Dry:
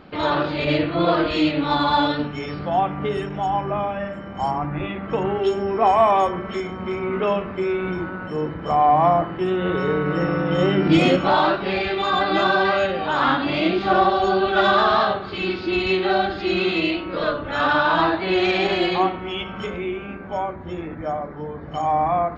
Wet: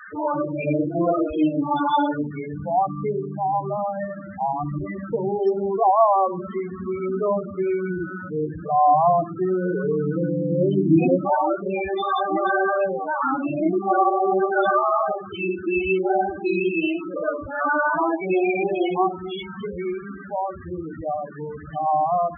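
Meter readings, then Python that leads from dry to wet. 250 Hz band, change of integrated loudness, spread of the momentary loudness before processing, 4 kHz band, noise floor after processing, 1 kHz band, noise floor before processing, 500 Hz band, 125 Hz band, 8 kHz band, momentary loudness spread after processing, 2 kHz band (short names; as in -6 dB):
-1.0 dB, -2.0 dB, 11 LU, -15.0 dB, -36 dBFS, -1.5 dB, -34 dBFS, -1.0 dB, -2.0 dB, n/a, 11 LU, -5.0 dB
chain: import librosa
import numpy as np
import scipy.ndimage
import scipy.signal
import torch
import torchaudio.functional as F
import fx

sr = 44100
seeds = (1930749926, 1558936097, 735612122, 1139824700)

y = fx.dmg_noise_band(x, sr, seeds[0], low_hz=1100.0, high_hz=2000.0, level_db=-37.0)
y = fx.spec_topn(y, sr, count=8)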